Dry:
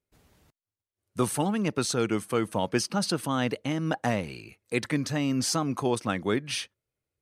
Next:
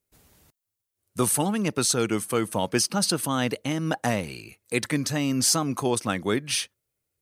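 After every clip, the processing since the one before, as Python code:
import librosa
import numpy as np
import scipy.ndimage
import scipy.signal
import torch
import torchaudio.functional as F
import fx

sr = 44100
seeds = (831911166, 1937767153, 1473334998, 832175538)

y = fx.high_shelf(x, sr, hz=6500.0, db=12.0)
y = F.gain(torch.from_numpy(y), 1.5).numpy()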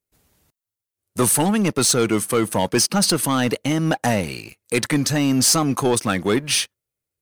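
y = fx.leveller(x, sr, passes=2)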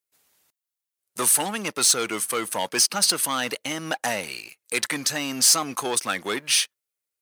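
y = fx.highpass(x, sr, hz=1200.0, slope=6)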